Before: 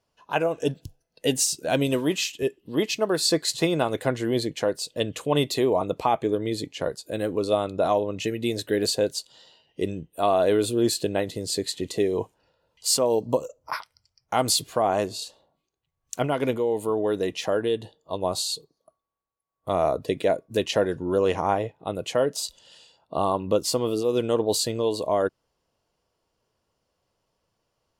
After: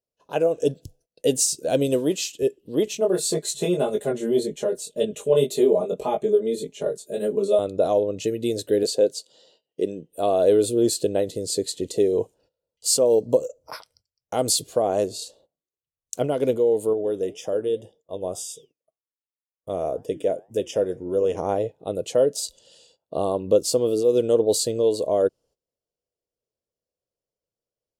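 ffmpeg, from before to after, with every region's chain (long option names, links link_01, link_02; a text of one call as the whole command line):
ffmpeg -i in.wav -filter_complex "[0:a]asettb=1/sr,asplit=3[link_01][link_02][link_03];[link_01]atrim=end=2.854[link_04];[link_02]atrim=start=2.85:end=7.59,asetpts=PTS-STARTPTS,afade=type=in:duration=0.004:curve=qsin,afade=type=out:start_time=4.736:duration=0.004:curve=qsin,equalizer=frequency=4800:width=4.8:gain=-12,aecho=1:1:4.9:0.99,atrim=end_sample=209034,flanger=delay=19:depth=3.5:speed=1.8[link_05];[link_03]atrim=start=7.586[link_06];[link_04][link_05]acrossfade=duration=0.004:curve1=hsin:curve2=qsin[link_07];[link_07][link_06]acrossfade=duration=0.004:curve1=qsin:curve2=hsin,asettb=1/sr,asplit=3[link_08][link_09][link_10];[link_08]atrim=end=8.834[link_11];[link_09]atrim=start=8.83:end=10.1,asetpts=PTS-STARTPTS,afade=type=in:duration=0.004:curve=qsin,afade=type=out:start_time=1.266:duration=0.004:curve=qsin,highpass=190,highshelf=frequency=6200:gain=-6.5[link_12];[link_10]atrim=start=10.096[link_13];[link_11][link_12]acrossfade=duration=0.004:curve1=hsin:curve2=qsin[link_14];[link_14][link_13]acrossfade=duration=0.004:curve1=qsin:curve2=hsin,asettb=1/sr,asplit=3[link_15][link_16][link_17];[link_15]atrim=end=16.934[link_18];[link_16]atrim=start=16.93:end=21.37,asetpts=PTS-STARTPTS,afade=type=in:duration=0.004:curve=qsin,afade=type=out:start_time=4.436:duration=0.004:curve=qsin,flanger=delay=5.9:depth=5.9:regen=-82:speed=1.9:shape=triangular,asuperstop=centerf=4200:order=8:qfactor=3.9[link_19];[link_17]atrim=start=21.366[link_20];[link_18][link_19]acrossfade=duration=0.004:curve1=hsin:curve2=qsin[link_21];[link_21][link_20]acrossfade=duration=0.004:curve1=qsin:curve2=hsin,agate=range=-17dB:threshold=-57dB:ratio=16:detection=peak,equalizer=frequency=500:width_type=o:width=1:gain=9,equalizer=frequency=1000:width_type=o:width=1:gain=-8,equalizer=frequency=2000:width_type=o:width=1:gain=-7,equalizer=frequency=8000:width_type=o:width=1:gain=5,volume=-1.5dB" out.wav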